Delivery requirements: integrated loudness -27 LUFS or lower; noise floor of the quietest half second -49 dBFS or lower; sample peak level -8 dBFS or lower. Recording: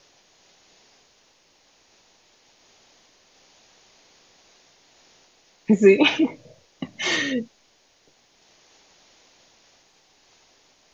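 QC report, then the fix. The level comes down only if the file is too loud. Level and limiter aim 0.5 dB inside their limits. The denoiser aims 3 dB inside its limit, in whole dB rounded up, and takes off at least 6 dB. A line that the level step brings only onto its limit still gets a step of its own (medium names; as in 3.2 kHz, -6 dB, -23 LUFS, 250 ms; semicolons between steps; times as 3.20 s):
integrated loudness -20.0 LUFS: fail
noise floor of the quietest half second -61 dBFS: pass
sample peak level -4.0 dBFS: fail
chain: trim -7.5 dB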